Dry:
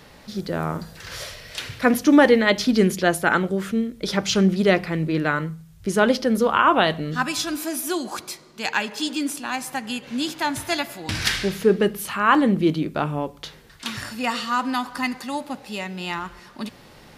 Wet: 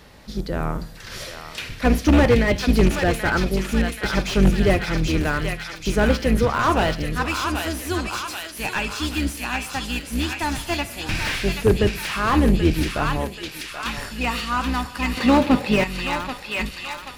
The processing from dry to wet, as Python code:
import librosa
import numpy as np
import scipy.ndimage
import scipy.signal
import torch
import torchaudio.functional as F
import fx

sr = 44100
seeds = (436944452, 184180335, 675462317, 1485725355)

p1 = fx.octave_divider(x, sr, octaves=2, level_db=2.0)
p2 = fx.graphic_eq(p1, sr, hz=(125, 250, 500, 1000, 2000, 4000, 8000), db=(11, 12, 12, 7, 11, 11, -6), at=(15.17, 15.84))
p3 = (np.mod(10.0 ** (6.0 / 20.0) * p2 + 1.0, 2.0) - 1.0) / 10.0 ** (6.0 / 20.0)
p4 = p2 + (p3 * librosa.db_to_amplitude(-7.0))
p5 = fx.dynamic_eq(p4, sr, hz=2500.0, q=4.7, threshold_db=-41.0, ratio=4.0, max_db=8)
p6 = p5 + fx.echo_thinned(p5, sr, ms=781, feedback_pct=74, hz=1100.0, wet_db=-6, dry=0)
p7 = fx.slew_limit(p6, sr, full_power_hz=300.0)
y = p7 * librosa.db_to_amplitude(-4.0)